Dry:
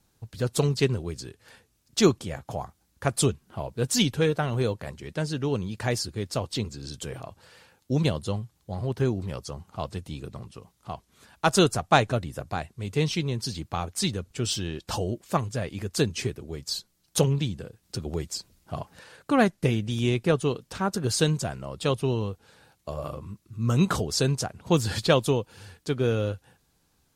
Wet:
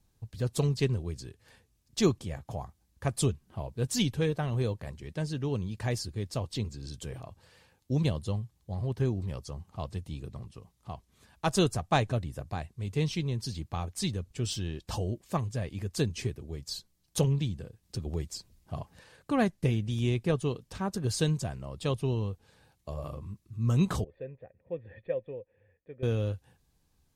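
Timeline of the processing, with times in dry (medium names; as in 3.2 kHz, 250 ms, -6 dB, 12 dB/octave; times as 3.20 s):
24.04–26.03 s: cascade formant filter e
whole clip: bass shelf 120 Hz +11 dB; band-stop 1.4 kHz, Q 10; trim -7 dB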